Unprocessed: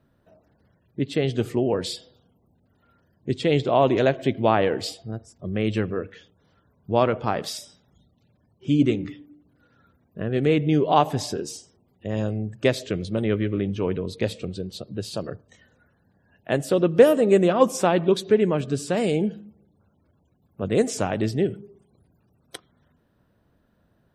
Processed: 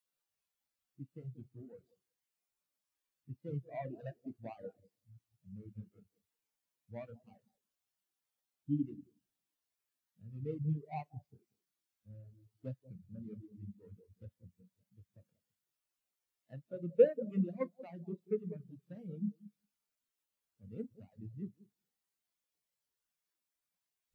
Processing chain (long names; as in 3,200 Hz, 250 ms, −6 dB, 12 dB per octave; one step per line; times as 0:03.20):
running median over 41 samples
high-pass filter 56 Hz
guitar amp tone stack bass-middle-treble 5-5-5
on a send: bucket-brigade delay 184 ms, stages 1,024, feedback 39%, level −5 dB
on the sum: four-comb reverb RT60 0.32 s, combs from 31 ms, DRR 7.5 dB
reverb reduction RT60 1 s
notch filter 390 Hz, Q 12
in parallel at −10 dB: bit-depth reduction 6 bits, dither triangular
on the sum: every bin expanded away from the loudest bin 2.5 to 1
level +5.5 dB